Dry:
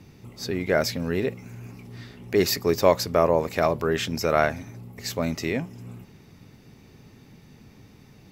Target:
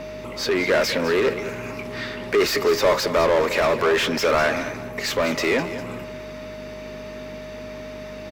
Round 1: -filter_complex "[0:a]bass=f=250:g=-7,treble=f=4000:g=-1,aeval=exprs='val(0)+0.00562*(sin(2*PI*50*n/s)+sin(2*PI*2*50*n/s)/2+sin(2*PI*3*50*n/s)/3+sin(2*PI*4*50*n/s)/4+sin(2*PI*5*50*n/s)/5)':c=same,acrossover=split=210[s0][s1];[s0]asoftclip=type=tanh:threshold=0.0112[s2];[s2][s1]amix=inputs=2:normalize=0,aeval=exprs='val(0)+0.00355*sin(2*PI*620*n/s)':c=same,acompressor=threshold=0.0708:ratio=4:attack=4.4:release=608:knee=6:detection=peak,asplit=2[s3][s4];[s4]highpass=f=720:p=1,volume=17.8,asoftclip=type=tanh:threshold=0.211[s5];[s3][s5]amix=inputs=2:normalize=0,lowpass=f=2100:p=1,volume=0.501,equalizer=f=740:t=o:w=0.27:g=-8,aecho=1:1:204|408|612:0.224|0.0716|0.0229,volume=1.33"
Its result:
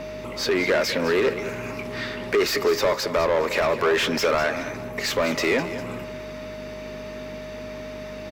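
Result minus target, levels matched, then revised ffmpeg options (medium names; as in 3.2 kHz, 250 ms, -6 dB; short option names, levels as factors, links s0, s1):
compression: peak gain reduction +11.5 dB
-filter_complex "[0:a]bass=f=250:g=-7,treble=f=4000:g=-1,aeval=exprs='val(0)+0.00562*(sin(2*PI*50*n/s)+sin(2*PI*2*50*n/s)/2+sin(2*PI*3*50*n/s)/3+sin(2*PI*4*50*n/s)/4+sin(2*PI*5*50*n/s)/5)':c=same,acrossover=split=210[s0][s1];[s0]asoftclip=type=tanh:threshold=0.0112[s2];[s2][s1]amix=inputs=2:normalize=0,aeval=exprs='val(0)+0.00355*sin(2*PI*620*n/s)':c=same,asplit=2[s3][s4];[s4]highpass=f=720:p=1,volume=17.8,asoftclip=type=tanh:threshold=0.211[s5];[s3][s5]amix=inputs=2:normalize=0,lowpass=f=2100:p=1,volume=0.501,equalizer=f=740:t=o:w=0.27:g=-8,aecho=1:1:204|408|612:0.224|0.0716|0.0229,volume=1.33"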